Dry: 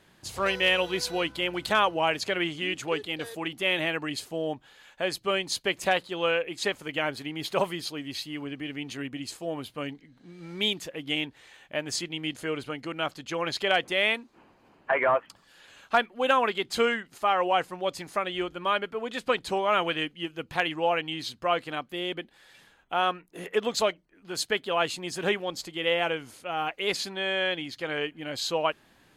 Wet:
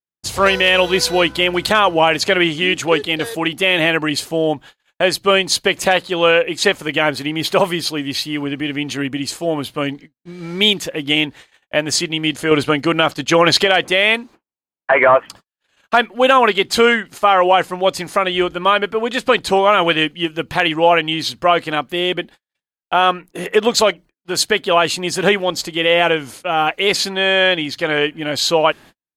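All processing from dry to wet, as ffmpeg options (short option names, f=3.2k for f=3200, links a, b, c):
-filter_complex "[0:a]asettb=1/sr,asplit=3[a][b][c];[a]atrim=end=12.514[d];[b]atrim=start=12.51:end=13.67,asetpts=PTS-STARTPTS,afade=t=in:d=0.004:c=qsin,afade=t=out:st=1.156:d=0.004:c=qsin,acontrast=34,agate=range=-33dB:threshold=-38dB:ratio=3:release=100:detection=peak[e];[c]atrim=start=13.666[f];[d][e]acrossfade=d=0.004:c1=hsin:c2=qsin[g];[g][f]acrossfade=d=0.004:c1=qsin:c2=hsin,agate=range=-55dB:threshold=-49dB:ratio=16:detection=peak,alimiter=level_in=14.5dB:limit=-1dB:release=50:level=0:latency=1,volume=-1dB"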